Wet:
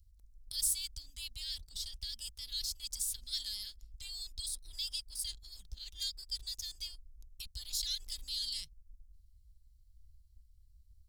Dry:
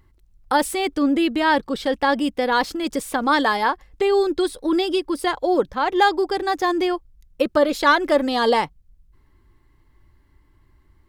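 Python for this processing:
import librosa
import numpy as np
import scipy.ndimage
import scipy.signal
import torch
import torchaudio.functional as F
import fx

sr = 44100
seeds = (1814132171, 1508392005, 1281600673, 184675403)

p1 = scipy.signal.sosfilt(scipy.signal.cheby2(4, 80, [330.0, 1100.0], 'bandstop', fs=sr, output='sos'), x)
p2 = fx.backlash(p1, sr, play_db=-44.5)
p3 = p1 + F.gain(torch.from_numpy(p2), -5.0).numpy()
y = F.gain(torch.from_numpy(p3), -4.0).numpy()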